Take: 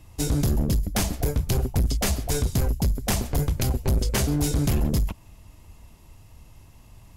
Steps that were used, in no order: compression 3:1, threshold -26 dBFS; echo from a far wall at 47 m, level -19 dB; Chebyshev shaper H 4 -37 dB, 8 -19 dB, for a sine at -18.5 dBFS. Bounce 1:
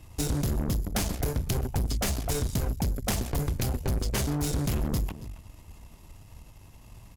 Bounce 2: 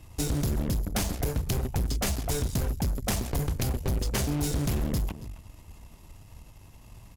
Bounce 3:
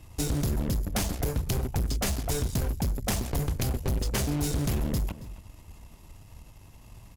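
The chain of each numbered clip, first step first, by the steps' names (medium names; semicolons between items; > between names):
echo from a far wall > compression > Chebyshev shaper; echo from a far wall > Chebyshev shaper > compression; Chebyshev shaper > echo from a far wall > compression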